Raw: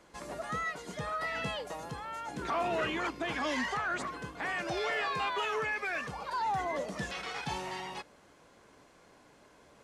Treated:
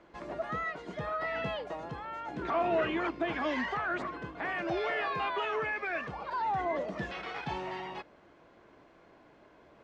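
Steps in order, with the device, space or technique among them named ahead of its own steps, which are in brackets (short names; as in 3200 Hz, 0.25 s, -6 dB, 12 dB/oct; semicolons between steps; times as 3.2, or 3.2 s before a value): inside a cardboard box (LPF 3000 Hz 12 dB/oct; small resonant body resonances 340/650 Hz, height 6 dB)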